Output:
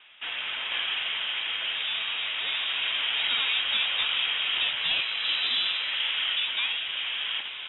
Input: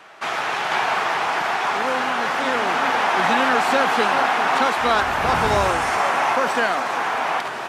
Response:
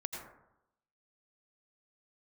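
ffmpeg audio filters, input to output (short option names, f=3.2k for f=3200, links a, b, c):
-af "aeval=exprs='0.531*(cos(1*acos(clip(val(0)/0.531,-1,1)))-cos(1*PI/2))+0.00944*(cos(2*acos(clip(val(0)/0.531,-1,1)))-cos(2*PI/2))':c=same,lowpass=f=3.4k:t=q:w=0.5098,lowpass=f=3.4k:t=q:w=0.6013,lowpass=f=3.4k:t=q:w=0.9,lowpass=f=3.4k:t=q:w=2.563,afreqshift=-4000,volume=-8.5dB"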